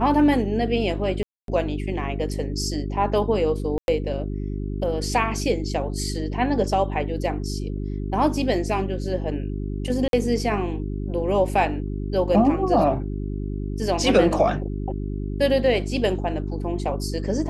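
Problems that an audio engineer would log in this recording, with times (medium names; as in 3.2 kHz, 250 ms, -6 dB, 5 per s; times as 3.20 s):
hum 50 Hz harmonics 8 -28 dBFS
1.23–1.48 s: dropout 252 ms
3.78–3.88 s: dropout 101 ms
10.08–10.13 s: dropout 52 ms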